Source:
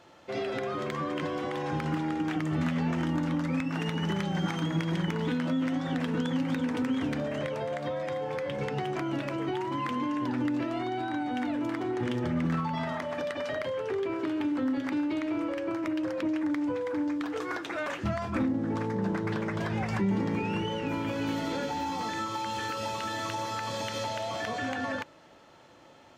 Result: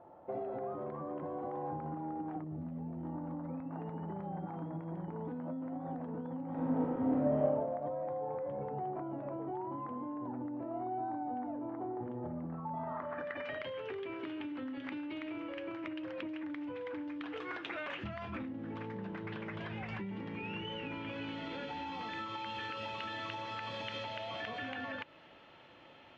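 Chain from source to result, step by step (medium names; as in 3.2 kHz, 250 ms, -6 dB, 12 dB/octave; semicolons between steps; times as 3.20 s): 2.44–3.05 s: peaking EQ 1.2 kHz -13 dB 2.7 oct; compression 5:1, threshold -36 dBFS, peak gain reduction 11.5 dB; low-pass sweep 790 Hz -> 2.9 kHz, 12.74–13.61 s; 6.48–7.41 s: reverb throw, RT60 1.2 s, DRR -7 dB; trim -4 dB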